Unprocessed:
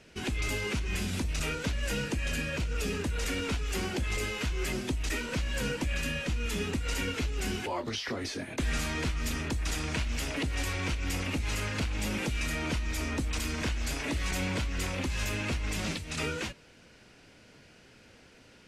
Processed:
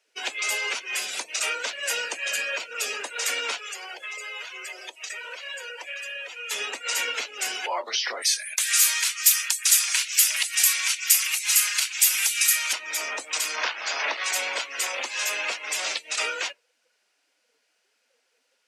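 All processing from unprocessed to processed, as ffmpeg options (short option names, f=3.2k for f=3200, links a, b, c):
-filter_complex "[0:a]asettb=1/sr,asplit=3[a][b][c];[a]atrim=end=3.594[d];[b]atrim=start=3.59:end=6.51,asetpts=PTS-STARTPTS,afade=t=in:d=0.004:c=qsin,afade=t=out:st=2.916:d=0.004:c=qsin,highpass=f=370:w=0.5412,highpass=f=370:w=1.3066,acompressor=threshold=-38dB:ratio=8:attack=3.2:release=140:knee=1:detection=peak[e];[c]atrim=start=6.506[f];[d][e]acrossfade=d=0.004:c1=hsin:c2=qsin[g];[g][f]acrossfade=d=0.004:c1=qsin:c2=hsin,asettb=1/sr,asplit=3[h][i][j];[h]atrim=end=8.224[k];[i]atrim=start=8.22:end=12.73,asetpts=PTS-STARTPTS,afade=t=in:d=0.004:c=qsin,afade=t=out:st=4.506:d=0.004:c=qsin,highpass=1.4k,aemphasis=mode=production:type=50kf[l];[j]atrim=start=12.726[m];[k][l]acrossfade=d=0.004:c1=hsin:c2=qsin[n];[n][m]acrossfade=d=0.004:c1=qsin:c2=hsin,asettb=1/sr,asplit=3[o][p][q];[o]atrim=end=13.564[r];[p]atrim=start=13.56:end=14.24,asetpts=PTS-STARTPTS,afade=t=in:d=0.004:c=qsin,afade=t=out:st=0.676:d=0.004:c=qsin,equalizer=f=1.1k:w=0.79:g=6,aeval=exprs='clip(val(0),-1,0.0376)':c=same,lowpass=f=6.3k:w=0.5412,lowpass=f=6.3k:w=1.3066[s];[q]atrim=start=14.236[t];[r][s]acrossfade=d=0.004:c1=hsin:c2=qsin[u];[u][t]acrossfade=d=0.004:c1=qsin:c2=hsin,afftdn=nr=22:nf=-45,highpass=f=570:w=0.5412,highpass=f=570:w=1.3066,highshelf=f=5.5k:g=11,volume=7dB"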